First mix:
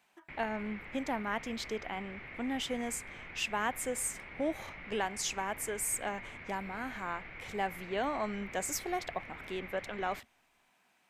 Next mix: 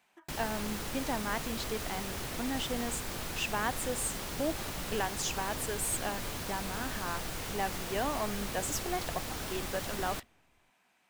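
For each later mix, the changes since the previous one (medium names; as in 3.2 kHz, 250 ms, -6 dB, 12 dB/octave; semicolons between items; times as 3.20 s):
background: remove four-pole ladder low-pass 2.3 kHz, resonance 80%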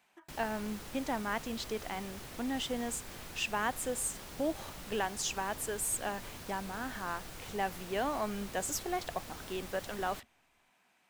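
background -8.5 dB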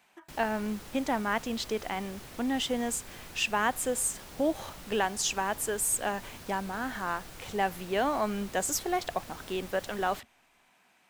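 speech +5.5 dB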